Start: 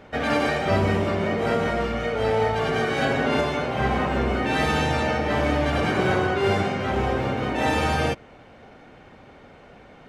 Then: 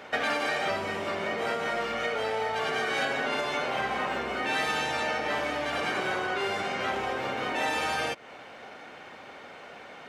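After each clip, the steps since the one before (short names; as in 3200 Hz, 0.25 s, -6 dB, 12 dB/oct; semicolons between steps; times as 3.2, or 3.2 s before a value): compressor 6:1, threshold -29 dBFS, peak gain reduction 12 dB; HPF 930 Hz 6 dB/oct; gain +7.5 dB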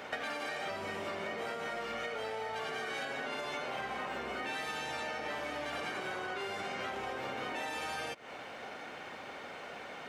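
high shelf 8500 Hz +4.5 dB; compressor 6:1, threshold -36 dBFS, peak gain reduction 12 dB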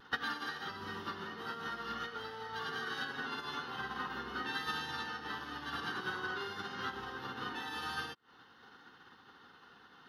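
fixed phaser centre 2300 Hz, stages 6; vibrato 0.49 Hz 14 cents; upward expander 2.5:1, over -56 dBFS; gain +8.5 dB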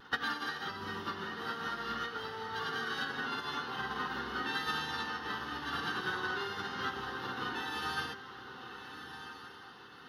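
in parallel at -8 dB: soft clip -29.5 dBFS, distortion -20 dB; on the sum: diffused feedback echo 1.296 s, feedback 40%, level -10 dB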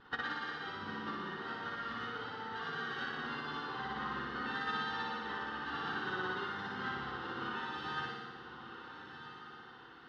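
median filter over 5 samples; air absorption 160 m; flutter echo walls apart 10.2 m, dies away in 1.3 s; gain -4 dB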